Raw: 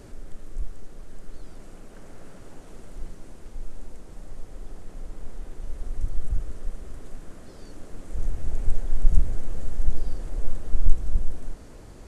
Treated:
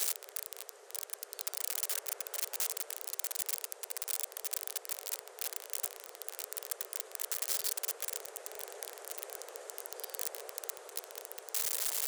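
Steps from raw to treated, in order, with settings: switching spikes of -19.5 dBFS; steep high-pass 400 Hz 72 dB/oct

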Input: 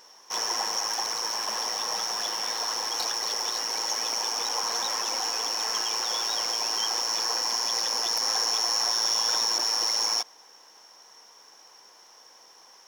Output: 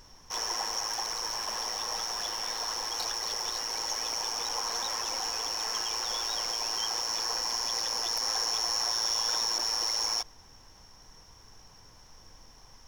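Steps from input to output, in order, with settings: added noise brown -51 dBFS; gain -4 dB

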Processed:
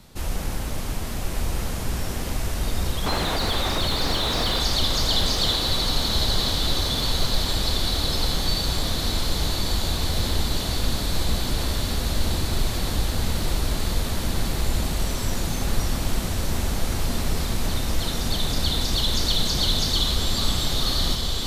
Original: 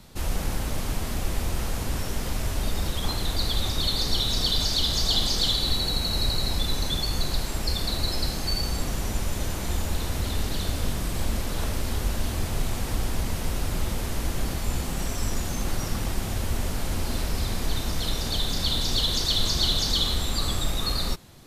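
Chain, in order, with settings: 3.06–4.6 overdrive pedal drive 25 dB, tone 1200 Hz, clips at -10.5 dBFS; diffused feedback echo 1.149 s, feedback 79%, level -4.5 dB

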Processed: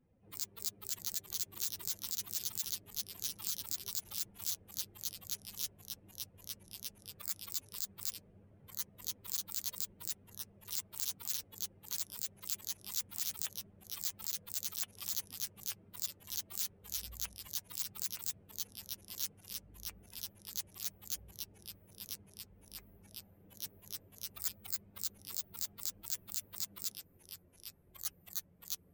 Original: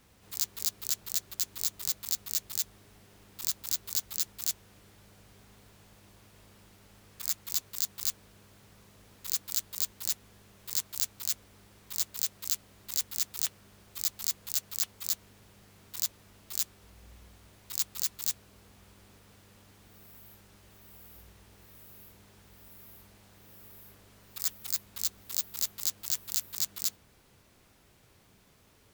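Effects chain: per-bin expansion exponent 2; echoes that change speed 0.602 s, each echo -2 st, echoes 3, each echo -6 dB; limiter -20.5 dBFS, peak gain reduction 9.5 dB; gain +3 dB

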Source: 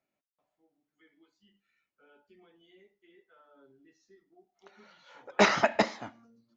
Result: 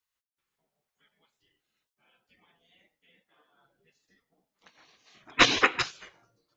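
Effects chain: spectral gate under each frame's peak -15 dB weak; 5.17–5.61 low shelf 180 Hz +10.5 dB; 5.31–5.79 spectral gain 220–4200 Hz +7 dB; gain +6 dB

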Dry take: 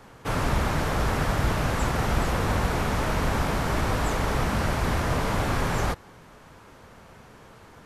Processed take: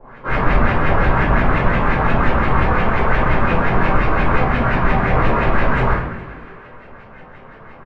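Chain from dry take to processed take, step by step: de-hum 270.3 Hz, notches 13; harmoniser +3 st 0 dB; LFO low-pass saw up 5.7 Hz 640–2800 Hz; frequency-shifting echo 0.206 s, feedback 49%, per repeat +110 Hz, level -15 dB; shoebox room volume 84 m³, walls mixed, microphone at 2.2 m; gain -6 dB

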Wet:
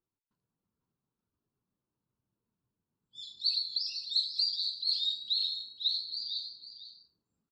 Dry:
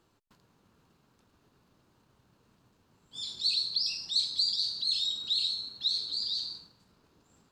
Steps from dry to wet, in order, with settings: wow and flutter 25 cents; tapped delay 0.117/0.499 s -16.5/-7.5 dB; spectral expander 1.5:1; gain -1.5 dB

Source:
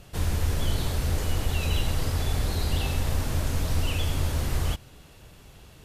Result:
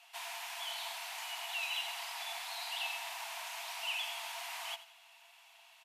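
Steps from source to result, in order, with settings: rippled Chebyshev high-pass 660 Hz, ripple 9 dB; on a send: feedback echo 85 ms, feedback 36%, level -14.5 dB

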